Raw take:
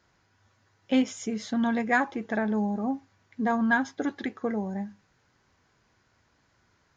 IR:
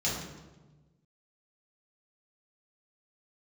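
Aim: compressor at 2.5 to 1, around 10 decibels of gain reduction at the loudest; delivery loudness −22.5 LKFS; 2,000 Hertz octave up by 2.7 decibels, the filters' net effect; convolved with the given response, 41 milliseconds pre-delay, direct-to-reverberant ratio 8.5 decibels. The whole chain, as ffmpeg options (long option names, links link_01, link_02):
-filter_complex "[0:a]equalizer=frequency=2000:width_type=o:gain=3.5,acompressor=threshold=-33dB:ratio=2.5,asplit=2[link_01][link_02];[1:a]atrim=start_sample=2205,adelay=41[link_03];[link_02][link_03]afir=irnorm=-1:irlink=0,volume=-16.5dB[link_04];[link_01][link_04]amix=inputs=2:normalize=0,volume=11dB"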